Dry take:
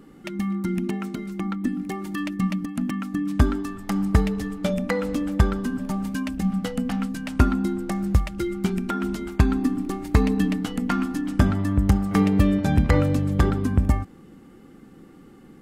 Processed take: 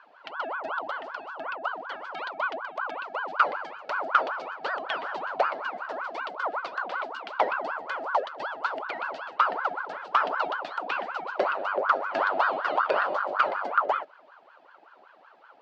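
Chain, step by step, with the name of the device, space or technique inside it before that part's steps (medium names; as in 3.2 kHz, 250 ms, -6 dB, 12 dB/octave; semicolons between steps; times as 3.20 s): voice changer toy (ring modulator with a swept carrier 890 Hz, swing 50%, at 5.3 Hz; cabinet simulation 460–4900 Hz, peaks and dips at 590 Hz +6 dB, 1.4 kHz +6 dB, 3 kHz +6 dB, 4.5 kHz +6 dB); trim -6 dB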